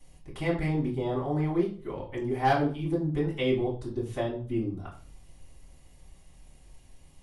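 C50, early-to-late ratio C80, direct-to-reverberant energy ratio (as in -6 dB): 8.0 dB, 13.0 dB, -6.0 dB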